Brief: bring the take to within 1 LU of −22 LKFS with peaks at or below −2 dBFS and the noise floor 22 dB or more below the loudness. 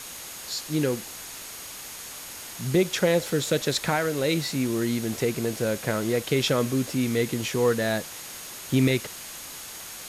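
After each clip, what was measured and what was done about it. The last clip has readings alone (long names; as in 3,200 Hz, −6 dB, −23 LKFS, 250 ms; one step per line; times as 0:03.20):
interfering tone 6,600 Hz; level of the tone −47 dBFS; background noise floor −40 dBFS; target noise floor −49 dBFS; integrated loudness −27.0 LKFS; sample peak −11.0 dBFS; target loudness −22.0 LKFS
→ notch filter 6,600 Hz, Q 30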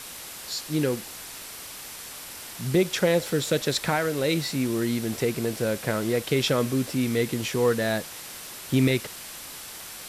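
interfering tone none found; background noise floor −40 dBFS; target noise floor −48 dBFS
→ broadband denoise 8 dB, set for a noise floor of −40 dBFS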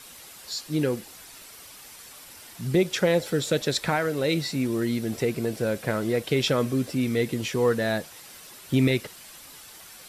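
background noise floor −46 dBFS; target noise floor −48 dBFS
→ broadband denoise 6 dB, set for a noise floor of −46 dBFS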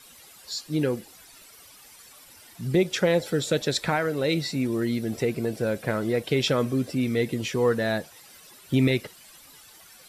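background noise floor −51 dBFS; integrated loudness −26.0 LKFS; sample peak −11.5 dBFS; target loudness −22.0 LKFS
→ level +4 dB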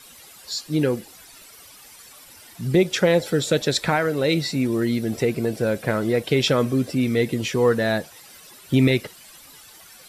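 integrated loudness −22.0 LKFS; sample peak −7.5 dBFS; background noise floor −47 dBFS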